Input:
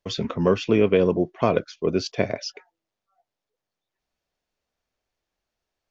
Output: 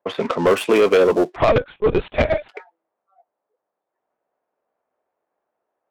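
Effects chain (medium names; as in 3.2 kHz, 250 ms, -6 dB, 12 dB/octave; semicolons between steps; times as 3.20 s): dead-time distortion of 0.089 ms; high-pass 600 Hz 12 dB/octave; tilt EQ -2 dB/octave; in parallel at -1.5 dB: peak limiter -16.5 dBFS, peak gain reduction 7.5 dB; 1.36–2.49 s: on the sum: LPC vocoder at 8 kHz pitch kept; saturation -18 dBFS, distortion -11 dB; level-controlled noise filter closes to 970 Hz, open at -23.5 dBFS; trim +9 dB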